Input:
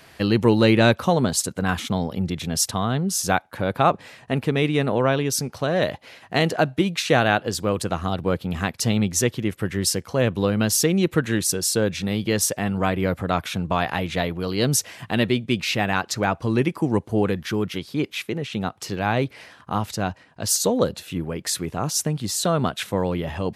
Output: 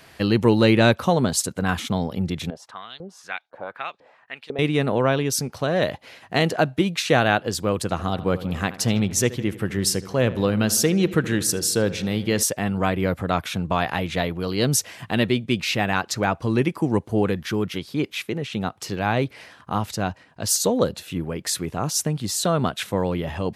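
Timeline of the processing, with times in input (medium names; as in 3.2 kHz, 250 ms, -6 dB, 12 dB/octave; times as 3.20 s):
2.50–4.59 s: LFO band-pass saw up 2 Hz 450–4900 Hz
7.81–12.43 s: filtered feedback delay 77 ms, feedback 69%, low-pass 3.7 kHz, level -16 dB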